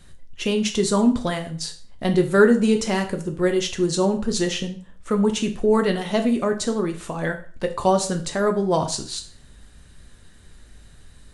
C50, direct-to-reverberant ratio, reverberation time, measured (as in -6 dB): 12.5 dB, 5.0 dB, 0.40 s